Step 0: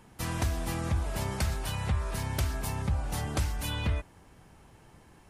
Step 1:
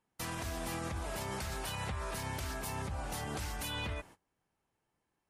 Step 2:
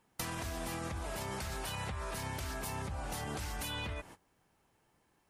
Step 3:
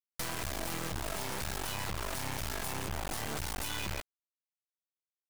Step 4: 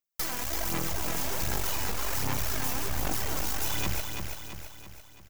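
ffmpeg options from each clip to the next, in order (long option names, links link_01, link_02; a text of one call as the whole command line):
ffmpeg -i in.wav -af "agate=range=-25dB:threshold=-47dB:ratio=16:detection=peak,lowshelf=frequency=170:gain=-10.5,alimiter=level_in=6dB:limit=-24dB:level=0:latency=1:release=93,volume=-6dB,volume=1dB" out.wav
ffmpeg -i in.wav -af "acompressor=threshold=-47dB:ratio=6,volume=10dB" out.wav
ffmpeg -i in.wav -af "acrusher=bits=4:dc=4:mix=0:aa=0.000001,volume=5dB" out.wav
ffmpeg -i in.wav -af "aexciter=amount=1.6:drive=4.7:freq=5500,aphaser=in_gain=1:out_gain=1:delay=4.2:decay=0.57:speed=1.3:type=sinusoidal,aecho=1:1:334|668|1002|1336|1670|2004:0.531|0.271|0.138|0.0704|0.0359|0.0183" out.wav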